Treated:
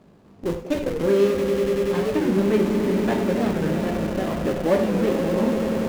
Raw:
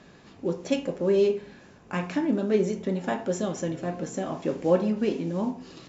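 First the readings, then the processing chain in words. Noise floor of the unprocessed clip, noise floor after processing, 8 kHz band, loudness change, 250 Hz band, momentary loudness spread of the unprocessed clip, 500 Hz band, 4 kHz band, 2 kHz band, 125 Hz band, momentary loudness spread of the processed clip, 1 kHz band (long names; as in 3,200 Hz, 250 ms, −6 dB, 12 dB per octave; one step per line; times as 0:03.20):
−52 dBFS, −51 dBFS, can't be measured, +5.5 dB, +6.0 dB, 9 LU, +5.5 dB, +6.0 dB, +6.5 dB, +6.0 dB, 6 LU, +5.5 dB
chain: running median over 25 samples
dynamic equaliser 1,800 Hz, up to +6 dB, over −46 dBFS, Q 1
echo that builds up and dies away 96 ms, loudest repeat 5, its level −10 dB
in parallel at −9 dB: comparator with hysteresis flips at −27 dBFS
on the sum: reverb whose tail is shaped and stops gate 120 ms flat, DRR 7.5 dB
wow of a warped record 45 rpm, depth 160 cents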